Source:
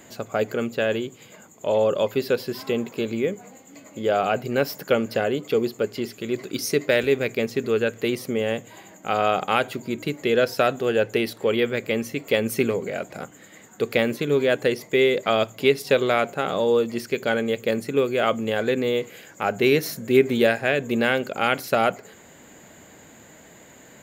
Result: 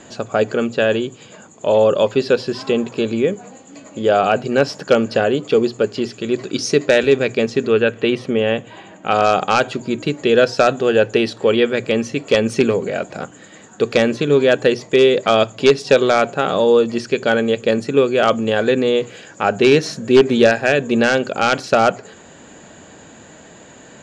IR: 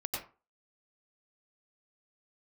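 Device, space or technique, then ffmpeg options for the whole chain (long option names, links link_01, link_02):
synthesiser wavefolder: -filter_complex "[0:a]bandreject=frequency=60:width_type=h:width=6,bandreject=frequency=120:width_type=h:width=6,aeval=exprs='0.355*(abs(mod(val(0)/0.355+3,4)-2)-1)':channel_layout=same,lowpass=frequency=7400:width=0.5412,lowpass=frequency=7400:width=1.3066,lowpass=11000,bandreject=frequency=2100:width=7.1,asettb=1/sr,asplit=3[link_01][link_02][link_03];[link_01]atrim=end=7.674[link_04];[link_02]atrim=start=7.67:end=9.13,asetpts=PTS-STARTPTS,afade=type=in:duration=0.004:curve=qsin,afade=type=out:start_time=1.456:duration=0.004:curve=qsin,highshelf=frequency=4100:width_type=q:width=1.5:gain=-7.5[link_05];[link_03]atrim=start=9.126[link_06];[link_04][link_05]acrossfade=duration=0.004:curve1=hsin:curve2=qsin[link_07];[link_07][link_06]acrossfade=duration=0.004:curve1=qsin:curve2=hsin,volume=7dB"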